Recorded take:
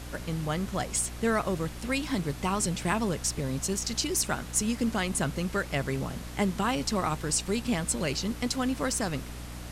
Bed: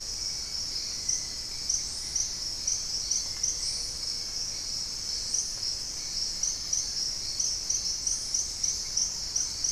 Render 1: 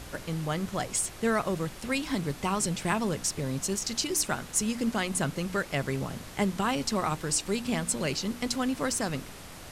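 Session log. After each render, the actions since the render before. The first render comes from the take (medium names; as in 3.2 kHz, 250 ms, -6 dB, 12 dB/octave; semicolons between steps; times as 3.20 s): de-hum 60 Hz, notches 5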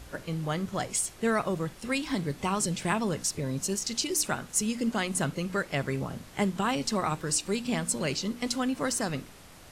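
noise print and reduce 6 dB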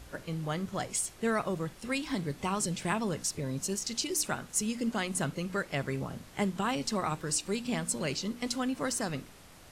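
trim -3 dB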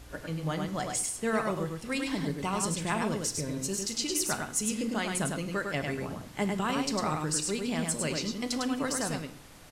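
on a send: delay 102 ms -4 dB; on the sum: FDN reverb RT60 0.63 s, low-frequency decay 1×, high-frequency decay 0.9×, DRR 10.5 dB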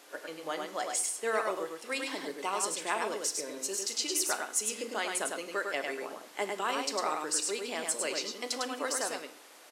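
high-pass 360 Hz 24 dB/octave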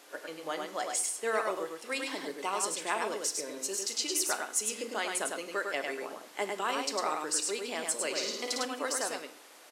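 8.10–8.65 s: flutter echo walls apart 9.4 m, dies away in 0.71 s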